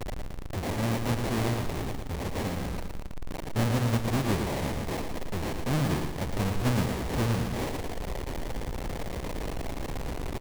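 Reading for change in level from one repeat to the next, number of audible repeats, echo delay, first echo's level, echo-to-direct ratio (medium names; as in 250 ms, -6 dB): -7.5 dB, 4, 113 ms, -6.0 dB, -5.0 dB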